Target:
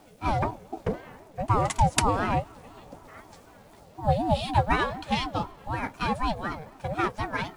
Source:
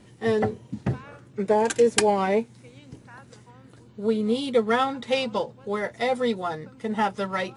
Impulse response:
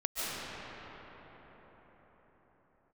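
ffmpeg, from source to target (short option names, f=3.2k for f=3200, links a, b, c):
-filter_complex "[0:a]acrusher=bits=9:mix=0:aa=0.000001,asettb=1/sr,asplit=3[a][b][c];[a]atrim=end=3.034[d];[b]atrim=start=3.03:end=4.73,asetpts=PTS-STARTPTS,afade=t=in:d=0.004:c=qsin,afade=t=out:st=1.696:d=0.004:c=qsin,asplit=2[e][f];[f]adelay=13,volume=-3dB[g];[e][g]amix=inputs=2:normalize=0,atrim=end_sample=74970[h];[c]atrim=start=4.726[i];[d][h]acrossfade=d=0.004:c1=hsin:c2=qsin[j];[j][i]acrossfade=d=0.004:c1=qsin:c2=hsin,asplit=2[k][l];[1:a]atrim=start_sample=2205,adelay=12[m];[l][m]afir=irnorm=-1:irlink=0,volume=-32dB[n];[k][n]amix=inputs=2:normalize=0,aeval=exprs='val(0)*sin(2*PI*420*n/s+420*0.3/4*sin(2*PI*4*n/s))':c=same"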